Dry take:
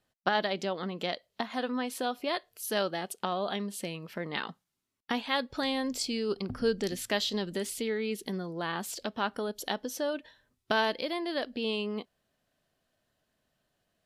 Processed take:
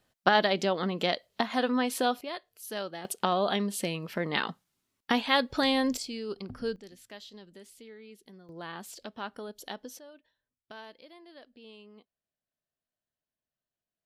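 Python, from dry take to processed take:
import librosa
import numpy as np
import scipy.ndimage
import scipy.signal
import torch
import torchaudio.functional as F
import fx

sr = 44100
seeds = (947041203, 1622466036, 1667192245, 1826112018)

y = fx.gain(x, sr, db=fx.steps((0.0, 5.0), (2.21, -6.0), (3.05, 5.0), (5.97, -5.0), (6.76, -17.0), (8.49, -7.0), (9.99, -19.0)))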